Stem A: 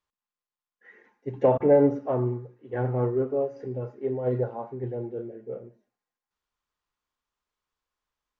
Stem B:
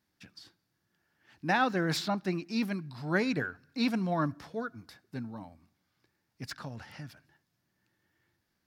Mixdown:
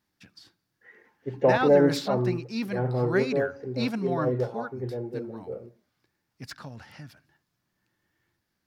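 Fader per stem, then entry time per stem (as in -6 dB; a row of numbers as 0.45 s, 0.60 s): -0.5 dB, 0.0 dB; 0.00 s, 0.00 s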